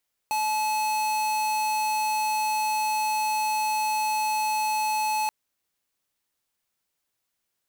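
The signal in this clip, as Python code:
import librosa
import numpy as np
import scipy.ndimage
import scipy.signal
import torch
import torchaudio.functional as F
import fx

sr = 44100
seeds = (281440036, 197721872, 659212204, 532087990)

y = fx.tone(sr, length_s=4.98, wave='square', hz=860.0, level_db=-25.5)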